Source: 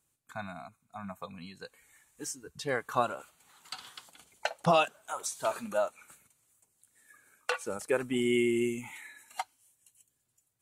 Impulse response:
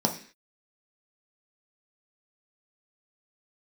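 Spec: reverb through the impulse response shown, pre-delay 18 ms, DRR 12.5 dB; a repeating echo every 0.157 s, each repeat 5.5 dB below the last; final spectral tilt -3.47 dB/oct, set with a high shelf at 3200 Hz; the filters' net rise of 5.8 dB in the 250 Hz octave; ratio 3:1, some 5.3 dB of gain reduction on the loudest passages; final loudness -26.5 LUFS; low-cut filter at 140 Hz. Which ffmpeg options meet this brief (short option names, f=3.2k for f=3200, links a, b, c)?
-filter_complex "[0:a]highpass=140,equalizer=f=250:t=o:g=8,highshelf=f=3.2k:g=8,acompressor=threshold=-26dB:ratio=3,aecho=1:1:157|314|471|628|785|942|1099:0.531|0.281|0.149|0.079|0.0419|0.0222|0.0118,asplit=2[a][b];[1:a]atrim=start_sample=2205,adelay=18[c];[b][c]afir=irnorm=-1:irlink=0,volume=-23dB[d];[a][d]amix=inputs=2:normalize=0,volume=6dB"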